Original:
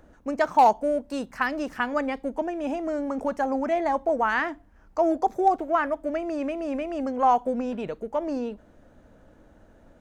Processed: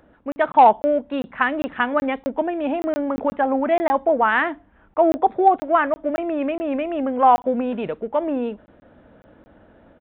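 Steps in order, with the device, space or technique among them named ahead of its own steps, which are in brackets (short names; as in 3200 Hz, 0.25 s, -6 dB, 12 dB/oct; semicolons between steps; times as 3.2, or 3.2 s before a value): call with lost packets (HPF 110 Hz 6 dB/oct; downsampling 8000 Hz; AGC gain up to 4 dB; packet loss packets of 20 ms random); gain +2 dB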